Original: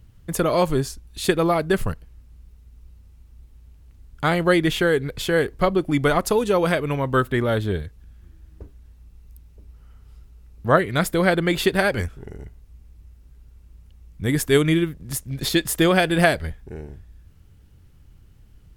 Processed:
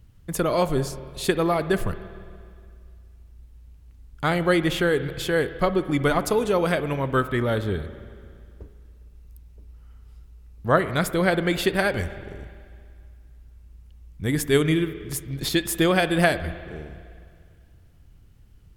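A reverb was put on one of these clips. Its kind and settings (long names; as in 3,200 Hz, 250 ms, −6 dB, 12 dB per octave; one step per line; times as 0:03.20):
spring reverb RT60 2.2 s, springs 51/58 ms, chirp 55 ms, DRR 12.5 dB
level −2.5 dB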